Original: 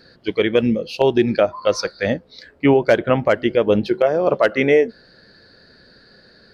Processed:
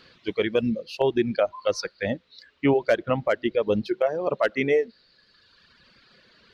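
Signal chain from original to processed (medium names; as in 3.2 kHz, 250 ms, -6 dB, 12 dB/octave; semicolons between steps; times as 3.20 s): band noise 1–4.3 kHz -52 dBFS; reverb removal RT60 1.6 s; trim -6 dB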